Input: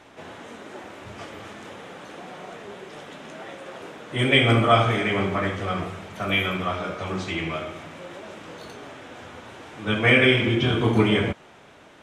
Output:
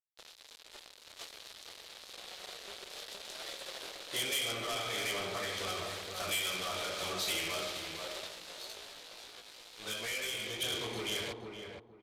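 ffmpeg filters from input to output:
-filter_complex "[0:a]dynaudnorm=f=510:g=9:m=3.76,highpass=72,aeval=exprs='sgn(val(0))*max(abs(val(0))-0.0158,0)':c=same,acompressor=threshold=0.0562:ratio=6,equalizer=f=125:t=o:w=1:g=-8,equalizer=f=250:t=o:w=1:g=-7,equalizer=f=500:t=o:w=1:g=4,equalizer=f=4000:t=o:w=1:g=11,asoftclip=type=tanh:threshold=0.0398,aresample=32000,aresample=44100,aemphasis=mode=production:type=75kf,asplit=2[s0][s1];[s1]adelay=469,lowpass=f=1200:p=1,volume=0.631,asplit=2[s2][s3];[s3]adelay=469,lowpass=f=1200:p=1,volume=0.26,asplit=2[s4][s5];[s5]adelay=469,lowpass=f=1200:p=1,volume=0.26,asplit=2[s6][s7];[s7]adelay=469,lowpass=f=1200:p=1,volume=0.26[s8];[s0][s2][s4][s6][s8]amix=inputs=5:normalize=0,asplit=3[s9][s10][s11];[s9]afade=t=out:st=8.27:d=0.02[s12];[s10]flanger=delay=17:depth=2.1:speed=2.9,afade=t=in:st=8.27:d=0.02,afade=t=out:st=10.6:d=0.02[s13];[s11]afade=t=in:st=10.6:d=0.02[s14];[s12][s13][s14]amix=inputs=3:normalize=0,volume=0.422"

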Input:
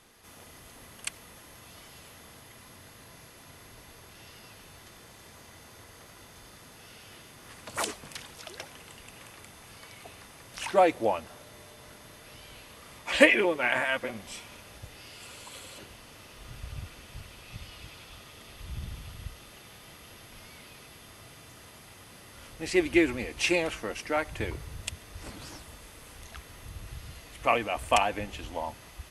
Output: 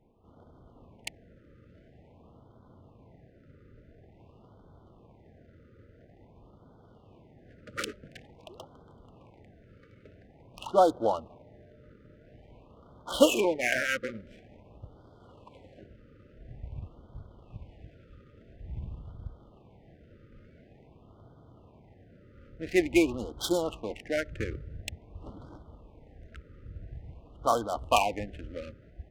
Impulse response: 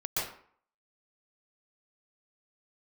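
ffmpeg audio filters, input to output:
-af "adynamicsmooth=sensitivity=5:basefreq=650,afftfilt=real='re*(1-between(b*sr/1024,840*pow(2200/840,0.5+0.5*sin(2*PI*0.48*pts/sr))/1.41,840*pow(2200/840,0.5+0.5*sin(2*PI*0.48*pts/sr))*1.41))':imag='im*(1-between(b*sr/1024,840*pow(2200/840,0.5+0.5*sin(2*PI*0.48*pts/sr))/1.41,840*pow(2200/840,0.5+0.5*sin(2*PI*0.48*pts/sr))*1.41))':win_size=1024:overlap=0.75"

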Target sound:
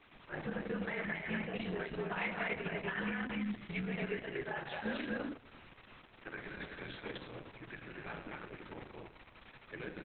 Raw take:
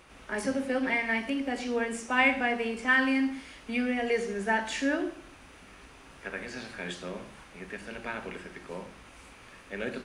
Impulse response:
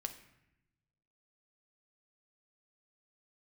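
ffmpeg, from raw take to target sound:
-filter_complex "[0:a]asettb=1/sr,asplit=3[s0][s1][s2];[s0]atrim=end=4.034[s3];[s1]atrim=start=4.03:end=4.86,asetpts=PTS-STARTPTS,afade=t=in:d=0.004:c=qsin,afade=t=out:st=0.826:d=0.004:c=qsin,lowshelf=f=400:g=-7.5[s4];[s2]atrim=start=4.856[s5];[s3][s4]acrossfade=d=0.004:c1=hsin:c2=qsin[s6];[s6][s5]acrossfade=d=0.004:c1=qsin:c2=hsin,afreqshift=-59,aecho=1:1:172|247.8:0.251|0.794,alimiter=limit=0.0841:level=0:latency=1:release=229,volume=0.473" -ar 48000 -c:a libopus -b:a 6k

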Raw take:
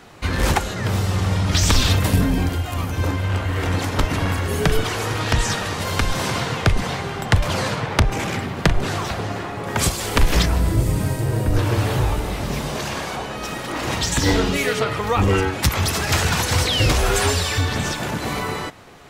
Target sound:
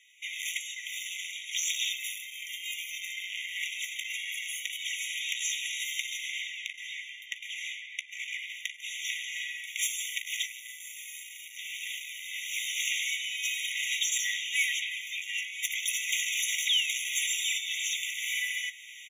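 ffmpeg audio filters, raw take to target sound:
-filter_complex "[0:a]asplit=3[s0][s1][s2];[s0]afade=t=out:st=6.16:d=0.02[s3];[s1]highshelf=f=3800:g=-10.5,afade=t=in:st=6.16:d=0.02,afade=t=out:st=8.49:d=0.02[s4];[s2]afade=t=in:st=8.49:d=0.02[s5];[s3][s4][s5]amix=inputs=3:normalize=0,dynaudnorm=f=160:g=3:m=6.31,asoftclip=type=tanh:threshold=0.376,asplit=2[s6][s7];[s7]adelay=16,volume=0.2[s8];[s6][s8]amix=inputs=2:normalize=0,afftfilt=real='re*eq(mod(floor(b*sr/1024/1900),2),1)':imag='im*eq(mod(floor(b*sr/1024/1900),2),1)':win_size=1024:overlap=0.75,volume=0.422"

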